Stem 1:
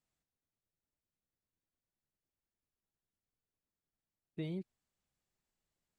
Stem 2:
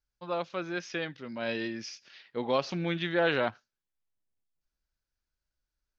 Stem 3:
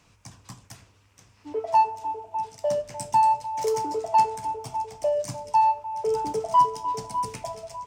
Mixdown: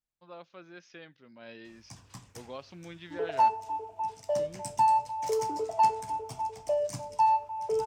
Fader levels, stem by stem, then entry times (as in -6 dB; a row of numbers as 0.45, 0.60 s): -8.5, -14.5, -4.0 dB; 0.00, 0.00, 1.65 s